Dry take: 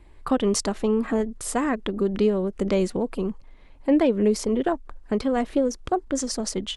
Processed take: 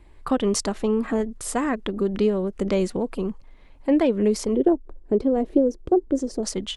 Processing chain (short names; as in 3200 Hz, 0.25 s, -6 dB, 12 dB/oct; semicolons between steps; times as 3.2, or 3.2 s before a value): 4.56–6.43 EQ curve 230 Hz 0 dB, 350 Hz +9 dB, 1300 Hz -13 dB